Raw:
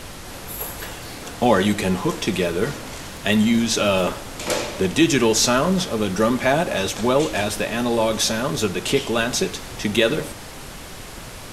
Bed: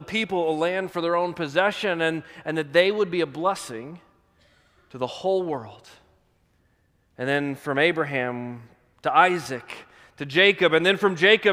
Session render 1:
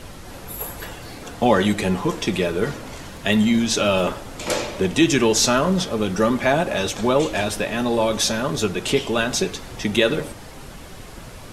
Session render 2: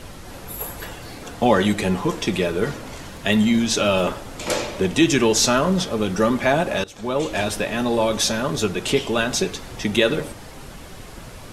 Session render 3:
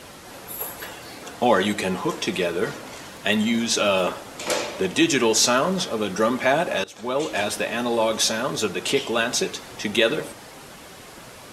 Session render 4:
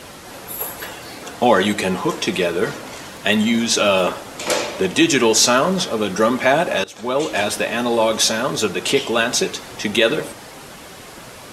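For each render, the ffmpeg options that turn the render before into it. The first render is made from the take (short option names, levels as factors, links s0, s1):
-af "afftdn=nr=6:nf=-37"
-filter_complex "[0:a]asplit=2[s0][s1];[s0]atrim=end=6.84,asetpts=PTS-STARTPTS,afade=t=out:st=6.836:d=0.004:c=hsin:silence=0.0794328[s2];[s1]atrim=start=6.84,asetpts=PTS-STARTPTS,afade=t=in:d=0.57:silence=0.0794328[s3];[s2][s3]concat=n=2:v=0:a=1"
-af "highpass=f=320:p=1"
-af "volume=1.68,alimiter=limit=0.794:level=0:latency=1"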